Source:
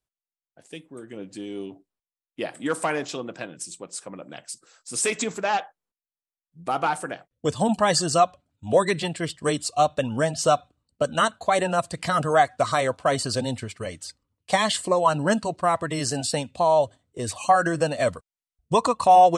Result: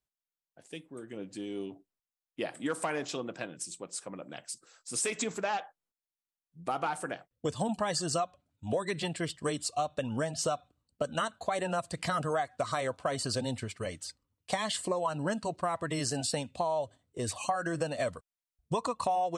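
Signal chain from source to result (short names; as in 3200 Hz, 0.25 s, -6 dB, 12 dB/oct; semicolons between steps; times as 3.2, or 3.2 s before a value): compressor 6:1, threshold -24 dBFS, peak gain reduction 12.5 dB; gain -4 dB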